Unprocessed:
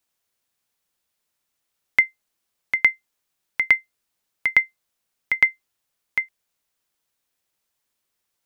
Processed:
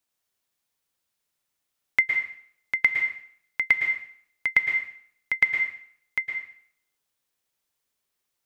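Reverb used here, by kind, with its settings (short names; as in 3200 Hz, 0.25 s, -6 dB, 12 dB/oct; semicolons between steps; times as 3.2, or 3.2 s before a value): plate-style reverb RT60 0.6 s, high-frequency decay 1×, pre-delay 0.1 s, DRR 4 dB; gain -4 dB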